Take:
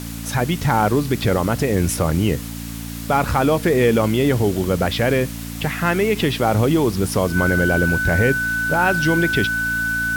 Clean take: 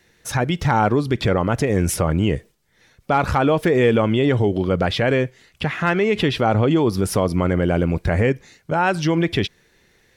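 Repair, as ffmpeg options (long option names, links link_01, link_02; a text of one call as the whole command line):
ffmpeg -i in.wav -af "bandreject=frequency=56.9:width_type=h:width=4,bandreject=frequency=113.8:width_type=h:width=4,bandreject=frequency=170.7:width_type=h:width=4,bandreject=frequency=227.6:width_type=h:width=4,bandreject=frequency=284.5:width_type=h:width=4,bandreject=frequency=1500:width=30,afwtdn=0.016" out.wav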